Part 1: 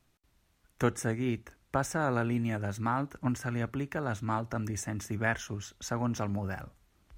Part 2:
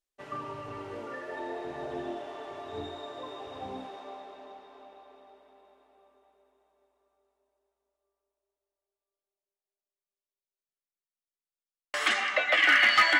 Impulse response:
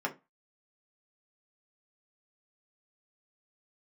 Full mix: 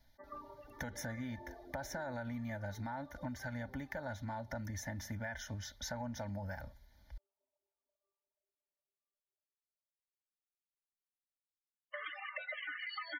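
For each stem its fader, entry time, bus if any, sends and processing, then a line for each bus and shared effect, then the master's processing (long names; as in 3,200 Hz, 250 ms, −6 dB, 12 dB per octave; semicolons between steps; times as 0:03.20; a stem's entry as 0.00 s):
+2.5 dB, 0.00 s, no send, brickwall limiter −22.5 dBFS, peak gain reduction 9.5 dB; phaser with its sweep stopped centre 1,800 Hz, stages 8
−7.5 dB, 0.00 s, send −21.5 dB, reverb reduction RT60 2 s; downward compressor 12 to 1, threshold −32 dBFS, peak gain reduction 14.5 dB; spectral peaks only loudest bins 32; automatic ducking −6 dB, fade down 0.25 s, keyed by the first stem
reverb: on, RT60 0.25 s, pre-delay 3 ms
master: comb filter 3.4 ms, depth 59%; downward compressor, threshold −39 dBFS, peak gain reduction 10 dB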